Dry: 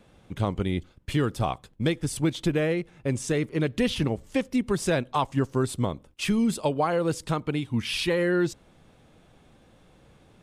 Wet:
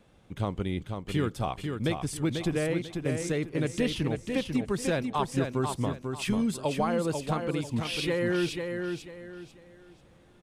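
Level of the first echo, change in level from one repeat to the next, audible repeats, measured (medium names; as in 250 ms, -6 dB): -5.5 dB, -11.0 dB, 3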